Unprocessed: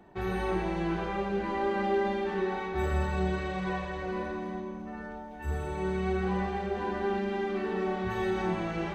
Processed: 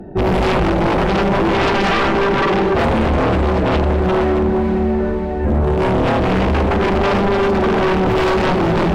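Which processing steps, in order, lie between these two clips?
local Wiener filter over 41 samples; 2.07–3.72 s: treble shelf 4.9 kHz -6 dB; echo that smears into a reverb 547 ms, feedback 52%, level -8 dB; in parallel at -1.5 dB: peak limiter -25 dBFS, peak gain reduction 7 dB; on the sum: sine folder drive 13 dB, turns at -14.5 dBFS; trim +2.5 dB

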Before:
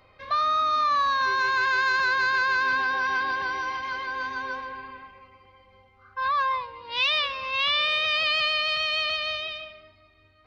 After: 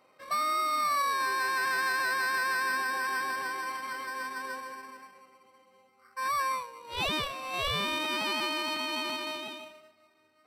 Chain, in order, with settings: high-pass 180 Hz 24 dB/octave; in parallel at -3 dB: sample-and-hold 13×; on the sum: resampled via 32 kHz; trim -8.5 dB

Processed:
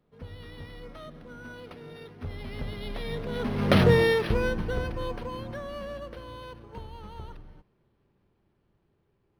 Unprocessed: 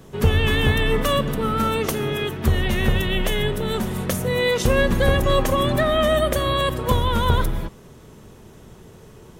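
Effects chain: Doppler pass-by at 3.82 s, 32 m/s, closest 3.1 m; decimation joined by straight lines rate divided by 6×; trim +7 dB

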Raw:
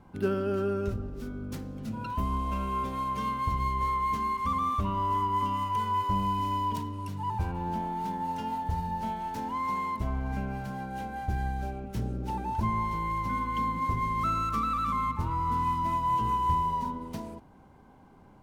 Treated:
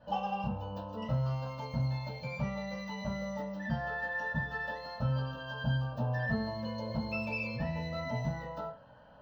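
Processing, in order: Butterworth band-stop 5.2 kHz, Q 0.58; static phaser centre 430 Hz, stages 4; FDN reverb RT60 0.64 s, low-frequency decay 0.9×, high-frequency decay 0.35×, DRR -9.5 dB; speed mistake 7.5 ips tape played at 15 ips; trim -8 dB

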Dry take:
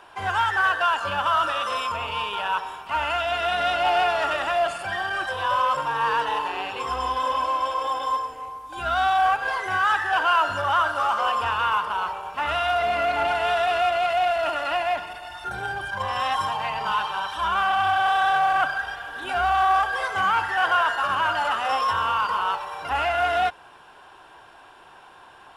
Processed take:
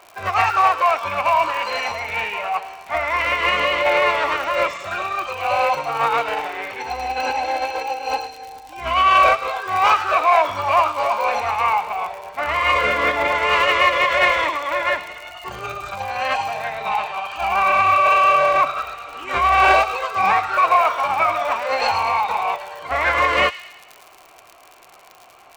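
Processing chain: distance through air 67 m; formant shift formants -4 st; crackle 46 per s -33 dBFS; tilt shelf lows -5 dB, about 1.1 kHz; feedback echo behind a high-pass 108 ms, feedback 53%, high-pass 3.1 kHz, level -5 dB; upward expansion 1.5:1, over -31 dBFS; trim +7.5 dB

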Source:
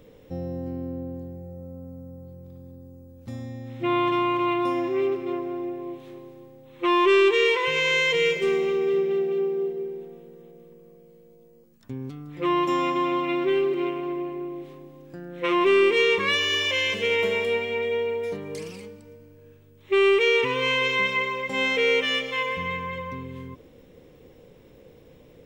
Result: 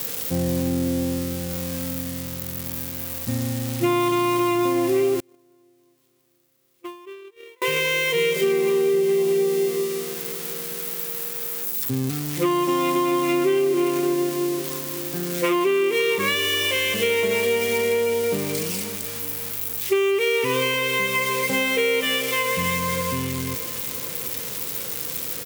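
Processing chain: zero-crossing glitches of -23 dBFS; high-pass 77 Hz 24 dB/octave; feedback delay 553 ms, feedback 55%, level -19 dB; compression 10:1, threshold -25 dBFS, peak gain reduction 11.5 dB; 5.20–7.62 s: gate -24 dBFS, range -36 dB; peaking EQ 170 Hz +4.5 dB 2.5 oct; trim +6 dB

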